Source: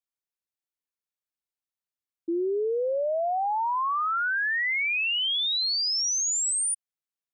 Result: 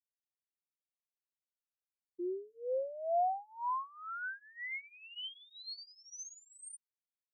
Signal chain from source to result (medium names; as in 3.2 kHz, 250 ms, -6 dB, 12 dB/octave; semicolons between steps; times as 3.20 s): drifting ripple filter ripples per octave 0.9, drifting -1.1 Hz, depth 17 dB; Doppler pass-by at 3.02 s, 14 m/s, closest 5.9 m; Shepard-style flanger falling 0.43 Hz; trim -6.5 dB